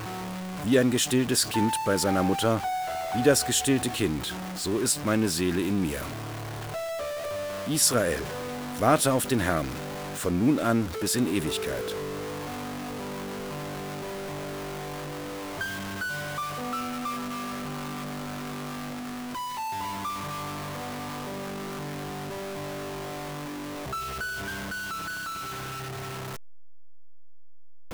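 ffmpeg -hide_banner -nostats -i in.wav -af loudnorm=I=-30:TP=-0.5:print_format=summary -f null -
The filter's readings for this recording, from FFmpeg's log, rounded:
Input Integrated:    -29.0 LUFS
Input True Peak:      -7.3 dBTP
Input LRA:             9.6 LU
Input Threshold:     -39.0 LUFS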